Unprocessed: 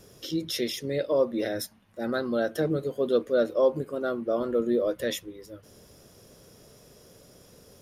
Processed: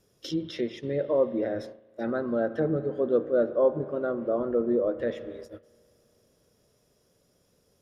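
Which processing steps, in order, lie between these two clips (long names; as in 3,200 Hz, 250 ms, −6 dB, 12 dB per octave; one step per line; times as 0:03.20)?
treble cut that deepens with the level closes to 1,300 Hz, closed at −25 dBFS
spring reverb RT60 3.5 s, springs 35 ms, chirp 50 ms, DRR 12.5 dB
noise gate −40 dBFS, range −14 dB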